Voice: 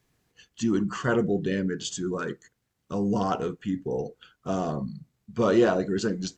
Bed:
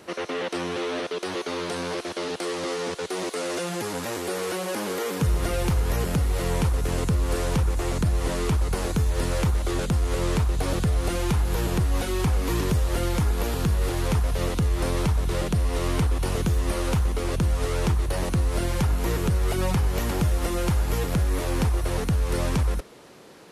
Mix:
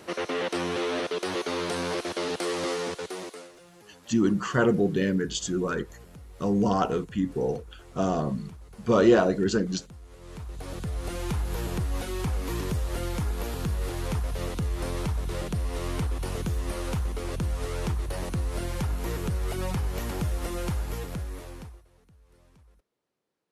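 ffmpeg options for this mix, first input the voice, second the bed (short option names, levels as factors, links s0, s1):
-filter_complex "[0:a]adelay=3500,volume=1.26[s0];[1:a]volume=7.5,afade=t=out:st=2.67:d=0.85:silence=0.0668344,afade=t=in:st=10.2:d=1.12:silence=0.133352,afade=t=out:st=20.67:d=1.18:silence=0.0354813[s1];[s0][s1]amix=inputs=2:normalize=0"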